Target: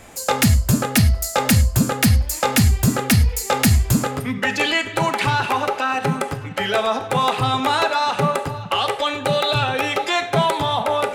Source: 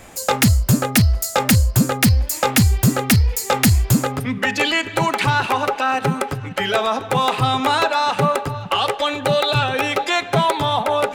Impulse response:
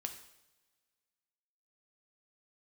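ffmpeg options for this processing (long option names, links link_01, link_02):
-filter_complex "[0:a]asplit=2[link_01][link_02];[1:a]atrim=start_sample=2205,atrim=end_sample=3087,asetrate=26460,aresample=44100[link_03];[link_02][link_03]afir=irnorm=-1:irlink=0,volume=3dB[link_04];[link_01][link_04]amix=inputs=2:normalize=0,volume=-9dB"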